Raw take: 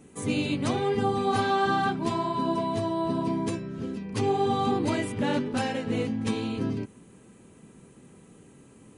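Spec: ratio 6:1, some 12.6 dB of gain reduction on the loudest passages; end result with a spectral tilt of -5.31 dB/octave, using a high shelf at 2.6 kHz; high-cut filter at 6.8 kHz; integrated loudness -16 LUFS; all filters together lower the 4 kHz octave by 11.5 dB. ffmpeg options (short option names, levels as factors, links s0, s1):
-af "lowpass=6800,highshelf=f=2600:g=-7,equalizer=f=4000:t=o:g=-9,acompressor=threshold=0.0158:ratio=6,volume=14.1"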